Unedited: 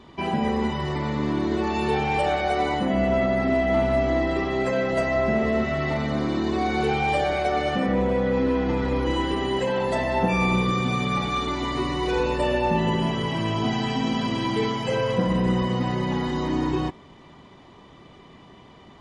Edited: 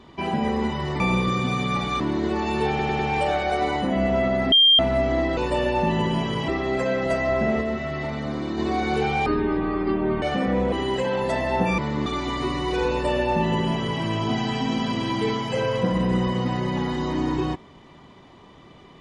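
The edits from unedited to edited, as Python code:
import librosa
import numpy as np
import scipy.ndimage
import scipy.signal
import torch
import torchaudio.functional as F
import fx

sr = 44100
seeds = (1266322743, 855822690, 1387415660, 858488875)

y = fx.edit(x, sr, fx.swap(start_s=1.0, length_s=0.28, other_s=10.41, other_length_s=1.0),
    fx.stutter(start_s=1.97, slice_s=0.1, count=4),
    fx.bleep(start_s=3.5, length_s=0.27, hz=3190.0, db=-11.5),
    fx.clip_gain(start_s=5.48, length_s=0.97, db=-3.5),
    fx.speed_span(start_s=7.13, length_s=0.5, speed=0.52),
    fx.cut(start_s=8.13, length_s=1.22),
    fx.duplicate(start_s=12.25, length_s=1.11, to_s=4.35), tone=tone)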